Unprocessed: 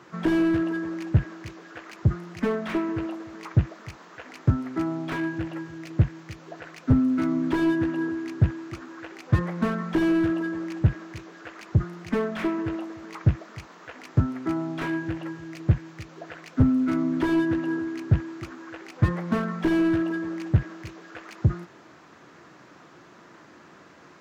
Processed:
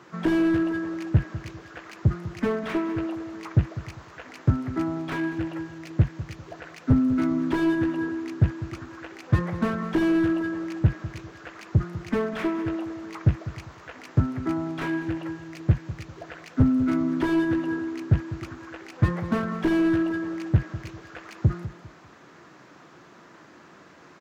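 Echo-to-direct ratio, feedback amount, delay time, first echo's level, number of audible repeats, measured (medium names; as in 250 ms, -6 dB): -14.0 dB, 29%, 199 ms, -14.5 dB, 2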